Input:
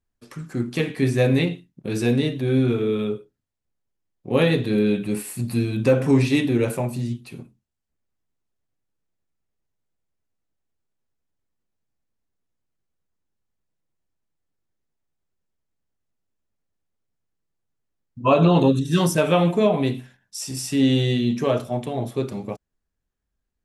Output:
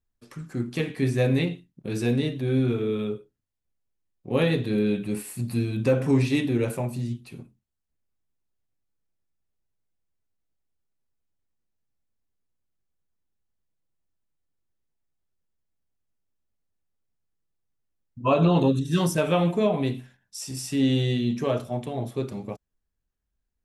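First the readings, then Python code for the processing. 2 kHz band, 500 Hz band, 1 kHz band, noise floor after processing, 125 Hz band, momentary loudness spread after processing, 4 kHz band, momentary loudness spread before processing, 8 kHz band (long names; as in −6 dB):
−4.5 dB, −4.5 dB, −4.5 dB, −81 dBFS, −3.0 dB, 15 LU, −4.5 dB, 13 LU, −4.5 dB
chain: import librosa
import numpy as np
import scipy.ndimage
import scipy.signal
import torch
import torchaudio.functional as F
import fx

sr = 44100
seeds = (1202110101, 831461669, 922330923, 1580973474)

y = fx.low_shelf(x, sr, hz=93.0, db=5.0)
y = y * 10.0 ** (-4.5 / 20.0)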